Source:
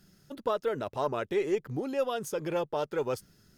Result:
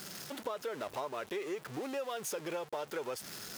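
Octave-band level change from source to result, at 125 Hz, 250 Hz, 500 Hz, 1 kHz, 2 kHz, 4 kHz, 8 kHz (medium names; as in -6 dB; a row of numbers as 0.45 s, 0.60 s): -11.5 dB, -7.5 dB, -8.5 dB, -6.0 dB, -2.5 dB, 0.0 dB, +3.5 dB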